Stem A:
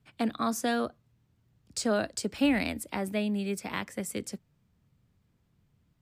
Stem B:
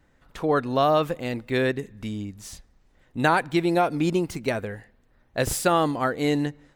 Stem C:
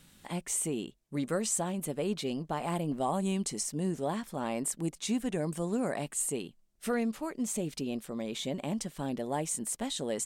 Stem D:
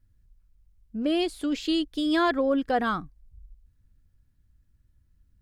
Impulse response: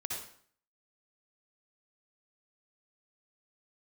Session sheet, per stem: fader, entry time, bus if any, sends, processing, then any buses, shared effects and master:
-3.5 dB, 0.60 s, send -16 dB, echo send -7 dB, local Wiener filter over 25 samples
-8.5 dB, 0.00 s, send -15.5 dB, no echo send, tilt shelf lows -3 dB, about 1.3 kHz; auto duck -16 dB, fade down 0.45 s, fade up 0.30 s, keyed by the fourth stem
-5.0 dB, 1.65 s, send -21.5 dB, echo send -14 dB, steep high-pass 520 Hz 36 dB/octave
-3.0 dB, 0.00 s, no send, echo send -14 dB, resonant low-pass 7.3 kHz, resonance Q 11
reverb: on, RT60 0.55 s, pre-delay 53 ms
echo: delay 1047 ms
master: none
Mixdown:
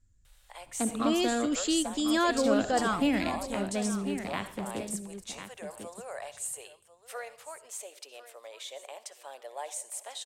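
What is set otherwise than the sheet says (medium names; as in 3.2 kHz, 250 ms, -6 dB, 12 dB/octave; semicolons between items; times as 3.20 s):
stem B: muted; stem C: entry 1.65 s -> 0.25 s; reverb return +7.5 dB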